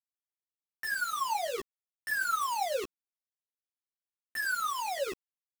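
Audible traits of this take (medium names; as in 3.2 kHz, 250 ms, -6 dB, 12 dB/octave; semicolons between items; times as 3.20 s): tremolo triangle 10 Hz, depth 65%; a quantiser's noise floor 6-bit, dither none; a shimmering, thickened sound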